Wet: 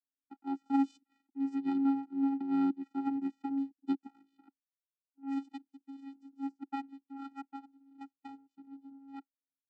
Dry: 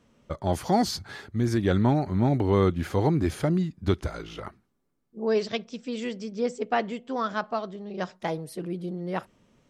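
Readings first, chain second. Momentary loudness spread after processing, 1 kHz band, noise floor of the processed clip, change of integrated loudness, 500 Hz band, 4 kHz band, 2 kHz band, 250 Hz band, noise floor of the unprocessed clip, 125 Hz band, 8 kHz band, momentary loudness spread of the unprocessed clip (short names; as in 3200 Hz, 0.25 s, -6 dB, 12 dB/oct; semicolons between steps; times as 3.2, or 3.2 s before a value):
20 LU, -12.0 dB, under -85 dBFS, -7.5 dB, -28.5 dB, under -20 dB, -20.0 dB, -5.0 dB, -70 dBFS, under -30 dB, under -25 dB, 12 LU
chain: power-law curve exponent 2; vocoder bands 8, square 274 Hz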